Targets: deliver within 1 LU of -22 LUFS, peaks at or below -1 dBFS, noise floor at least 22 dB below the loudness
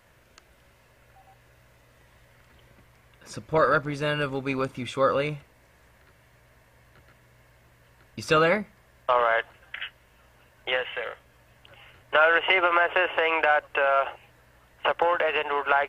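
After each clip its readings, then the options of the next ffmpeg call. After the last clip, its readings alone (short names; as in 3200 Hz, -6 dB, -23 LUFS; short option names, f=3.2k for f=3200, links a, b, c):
loudness -24.5 LUFS; peak -7.0 dBFS; loudness target -22.0 LUFS
-> -af "volume=2.5dB"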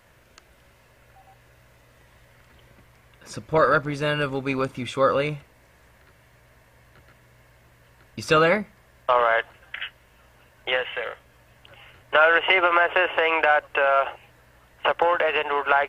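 loudness -22.0 LUFS; peak -4.5 dBFS; noise floor -57 dBFS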